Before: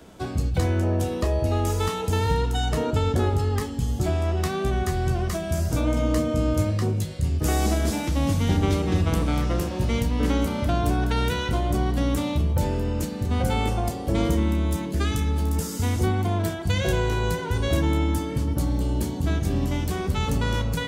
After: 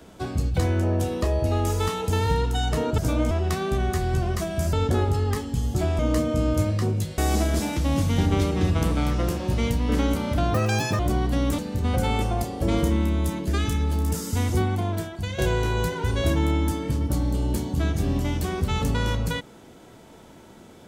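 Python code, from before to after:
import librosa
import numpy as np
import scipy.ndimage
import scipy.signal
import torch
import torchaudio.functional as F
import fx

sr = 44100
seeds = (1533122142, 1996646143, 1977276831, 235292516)

y = fx.edit(x, sr, fx.swap(start_s=2.98, length_s=1.26, other_s=5.66, other_length_s=0.33),
    fx.cut(start_s=7.18, length_s=0.31),
    fx.speed_span(start_s=10.85, length_s=0.79, speed=1.74),
    fx.cut(start_s=12.23, length_s=0.82),
    fx.fade_out_to(start_s=16.06, length_s=0.79, floor_db=-8.5), tone=tone)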